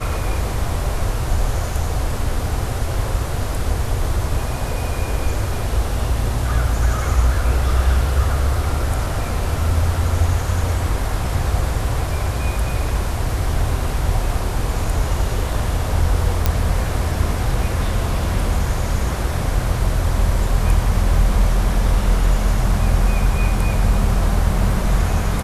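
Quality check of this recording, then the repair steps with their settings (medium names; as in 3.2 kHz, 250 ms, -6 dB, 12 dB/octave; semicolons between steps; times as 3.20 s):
16.46 s: pop -2 dBFS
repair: de-click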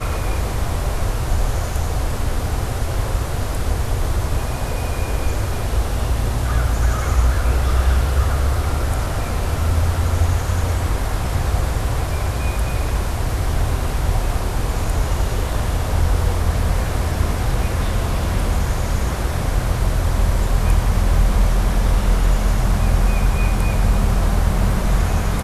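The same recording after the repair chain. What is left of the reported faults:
nothing left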